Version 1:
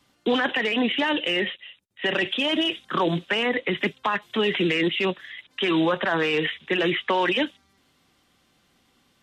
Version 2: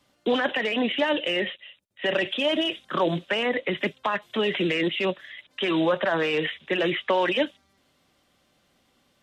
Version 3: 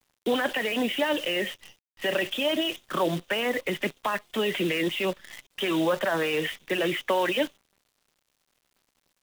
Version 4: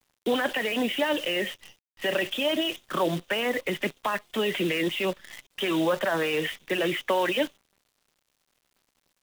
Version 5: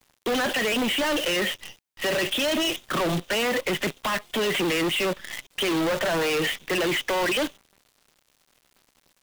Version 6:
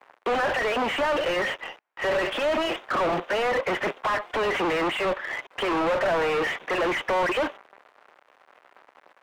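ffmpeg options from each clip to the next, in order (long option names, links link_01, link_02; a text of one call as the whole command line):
ffmpeg -i in.wav -af "equalizer=frequency=590:width=4.1:gain=8,volume=-2.5dB" out.wav
ffmpeg -i in.wav -af "acrusher=bits=7:dc=4:mix=0:aa=0.000001,volume=-2dB" out.wav
ffmpeg -i in.wav -af anull out.wav
ffmpeg -i in.wav -af "volume=31dB,asoftclip=hard,volume=-31dB,volume=8.5dB" out.wav
ffmpeg -i in.wav -filter_complex "[0:a]acrossover=split=390 2200:gain=0.2 1 0.112[link_01][link_02][link_03];[link_01][link_02][link_03]amix=inputs=3:normalize=0,asplit=2[link_04][link_05];[link_05]highpass=frequency=720:poles=1,volume=25dB,asoftclip=type=tanh:threshold=-17.5dB[link_06];[link_04][link_06]amix=inputs=2:normalize=0,lowpass=frequency=1300:poles=1,volume=-6dB,volume=1dB" out.wav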